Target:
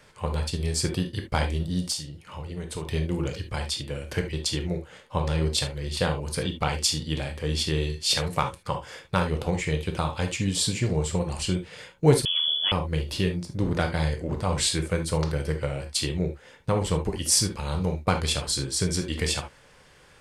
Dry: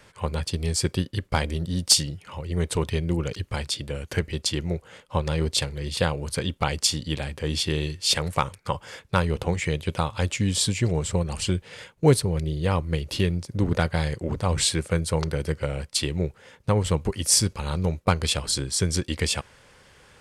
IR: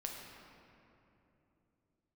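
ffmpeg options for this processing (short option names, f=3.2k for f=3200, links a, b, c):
-filter_complex "[0:a]asettb=1/sr,asplit=3[a][b][c];[a]atrim=end=1.844[d];[b]atrim=start=1.84:end=2.88,asetpts=PTS-STARTPTS,afade=t=in:d=0.004:c=qsin,afade=t=out:st=1.036:d=0.004:c=qsin,acompressor=threshold=-31dB:ratio=2.5[e];[c]atrim=start=2.876[f];[d][e]acrossfade=d=0.004:c1=hsin:c2=qsin[g];[g][f]acrossfade=d=0.004:c1=qsin:c2=hsin[h];[1:a]atrim=start_sample=2205,afade=t=out:st=0.13:d=0.01,atrim=end_sample=6174[i];[h][i]afir=irnorm=-1:irlink=0,asettb=1/sr,asplit=3[j][k][l];[j]atrim=end=12.254[m];[k]atrim=start=12.25:end=12.72,asetpts=PTS-STARTPTS,afade=t=in:d=0.004:c=qsin,afade=t=out:st=0.466:d=0.004:c=qsin,lowpass=f=3k:t=q:w=0.5098,lowpass=f=3k:t=q:w=0.6013,lowpass=f=3k:t=q:w=0.9,lowpass=f=3k:t=q:w=2.563,afreqshift=-3500[n];[l]atrim=start=12.716[o];[m][n]acrossfade=d=0.004:c1=hsin:c2=qsin[p];[p][o]acrossfade=d=0.004:c1=qsin:c2=hsin,volume=1.5dB"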